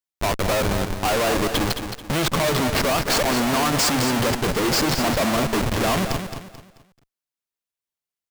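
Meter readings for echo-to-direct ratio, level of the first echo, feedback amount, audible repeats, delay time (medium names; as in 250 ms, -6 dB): -7.5 dB, -8.0 dB, 33%, 3, 218 ms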